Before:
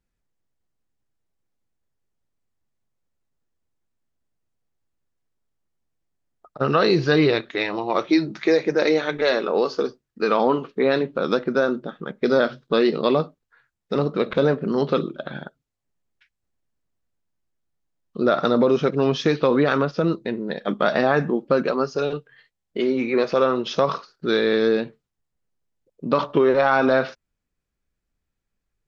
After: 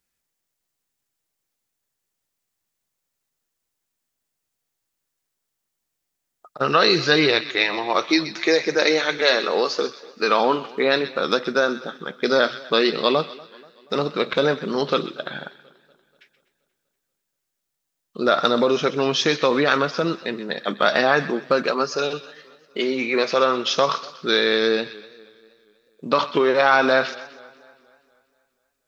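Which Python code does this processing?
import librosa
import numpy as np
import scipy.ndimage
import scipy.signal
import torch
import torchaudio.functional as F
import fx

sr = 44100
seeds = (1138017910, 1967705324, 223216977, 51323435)

p1 = fx.tilt_eq(x, sr, slope=3.0)
p2 = p1 + fx.echo_wet_highpass(p1, sr, ms=127, feedback_pct=35, hz=1600.0, wet_db=-12, dry=0)
p3 = fx.echo_warbled(p2, sr, ms=240, feedback_pct=51, rate_hz=2.8, cents=95, wet_db=-23)
y = p3 * 10.0 ** (2.5 / 20.0)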